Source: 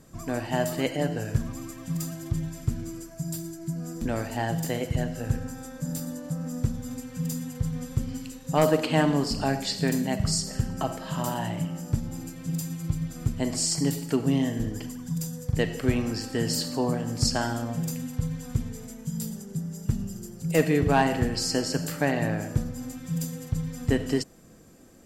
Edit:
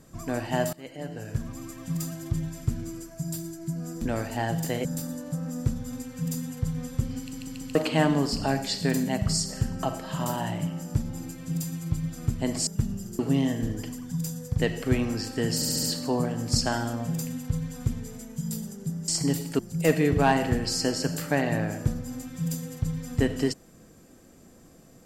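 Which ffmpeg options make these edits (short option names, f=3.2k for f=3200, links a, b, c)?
-filter_complex "[0:a]asplit=15[a][b][c][d][e][f][g][h][i][j][k][l][m][n][o];[a]atrim=end=0.73,asetpts=PTS-STARTPTS,afade=t=out:st=0.726:d=0.004:c=hsin:silence=0.0749894[p];[b]atrim=start=0.73:end=4.852,asetpts=PTS-STARTPTS,afade=t=in:d=1.09:silence=0.0749894[q];[c]atrim=start=5.828:end=8.312[r];[d]atrim=start=8.168:end=8.312[s];[e]atrim=start=8.168:end=8.312[t];[f]atrim=start=8.168:end=8.312[u];[g]atrim=start=8.728:end=13.652[v];[h]atrim=start=19.768:end=20.292[w];[i]atrim=start=14.158:end=16.592[x];[j]atrim=start=16.518:end=16.592[y];[k]atrim=start=16.518:end=16.592[z];[l]atrim=start=16.518:end=16.592[aa];[m]atrim=start=16.518:end=19.772[ab];[n]atrim=start=13.648:end=14.162[ac];[o]atrim=start=20.288[ad];[p][q]concat=n=2:v=0:a=1[ae];[ae][r]acrossfade=d=0.004:c1=hsin:c2=hsin[af];[af][s]acrossfade=d=0.004:c1=hsin:c2=hsin[ag];[ag][t]acrossfade=d=0.004:c1=hsin:c2=hsin[ah];[ah][u]acrossfade=d=0.004:c1=hsin:c2=hsin[ai];[ai][v]acrossfade=d=0.004:c1=hsin:c2=hsin[aj];[aj][w]acrossfade=d=0.004:c1=hsin:c2=hsin[ak];[ak][x]acrossfade=d=0.004:c1=hsin:c2=hsin[al];[al][y]acrossfade=d=0.004:c1=hsin:c2=hsin[am];[am][z]acrossfade=d=0.004:c1=hsin:c2=hsin[an];[an][aa]acrossfade=d=0.004:c1=hsin:c2=hsin[ao];[ao][ab]acrossfade=d=0.004:c1=hsin:c2=hsin[ap];[ap][ac]acrossfade=d=0.004:c1=hsin:c2=hsin[aq];[aq][ad]acrossfade=d=0.004:c1=hsin:c2=hsin"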